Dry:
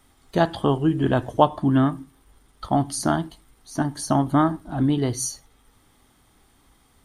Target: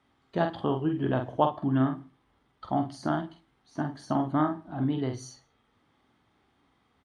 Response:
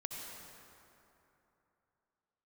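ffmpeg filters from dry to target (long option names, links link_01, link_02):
-filter_complex "[0:a]highpass=100,lowpass=3300,asplit=2[link_01][link_02];[link_02]adelay=46,volume=-6dB[link_03];[link_01][link_03]amix=inputs=2:normalize=0,asplit=2[link_04][link_05];[1:a]atrim=start_sample=2205,atrim=end_sample=6615,adelay=29[link_06];[link_05][link_06]afir=irnorm=-1:irlink=0,volume=-19dB[link_07];[link_04][link_07]amix=inputs=2:normalize=0,volume=-7.5dB"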